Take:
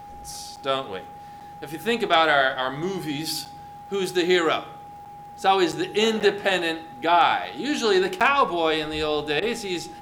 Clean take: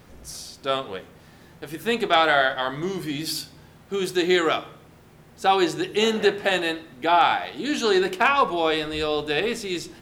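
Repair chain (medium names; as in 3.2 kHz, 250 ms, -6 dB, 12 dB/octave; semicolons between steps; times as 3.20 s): de-click; band-stop 820 Hz, Q 30; interpolate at 0.56/1.40/3.45/5.05/5.72/6.20/8.20 s, 7.6 ms; interpolate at 9.40 s, 18 ms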